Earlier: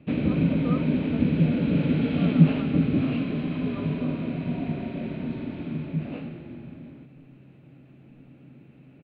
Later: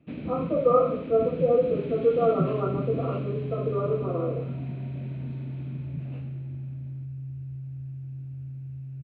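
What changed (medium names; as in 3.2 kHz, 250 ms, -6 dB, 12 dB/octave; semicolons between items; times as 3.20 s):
first sound -10.5 dB; reverb: on, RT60 0.60 s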